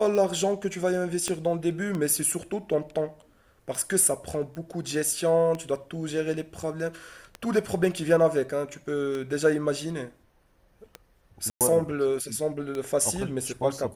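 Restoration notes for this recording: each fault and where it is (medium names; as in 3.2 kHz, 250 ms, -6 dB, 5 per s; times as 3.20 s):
tick 33 1/3 rpm -19 dBFS
1.28 s: pop -14 dBFS
4.55 s: pop -28 dBFS
11.50–11.61 s: dropout 108 ms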